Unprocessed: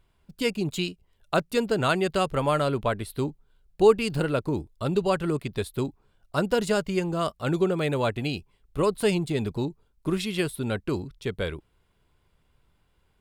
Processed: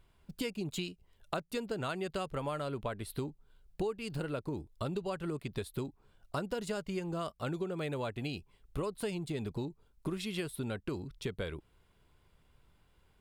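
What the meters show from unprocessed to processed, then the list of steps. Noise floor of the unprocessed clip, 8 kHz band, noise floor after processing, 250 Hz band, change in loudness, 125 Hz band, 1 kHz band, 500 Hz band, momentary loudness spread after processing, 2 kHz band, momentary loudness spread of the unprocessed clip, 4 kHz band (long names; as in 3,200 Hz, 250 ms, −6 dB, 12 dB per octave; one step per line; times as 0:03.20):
−68 dBFS, −9.0 dB, −69 dBFS, −10.5 dB, −11.5 dB, −10.0 dB, −12.0 dB, −13.0 dB, 5 LU, −12.0 dB, 8 LU, −10.5 dB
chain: downward compressor 6 to 1, threshold −34 dBFS, peak gain reduction 20 dB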